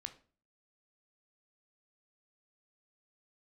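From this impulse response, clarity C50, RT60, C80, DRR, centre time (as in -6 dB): 14.5 dB, 0.40 s, 19.5 dB, 8.0 dB, 7 ms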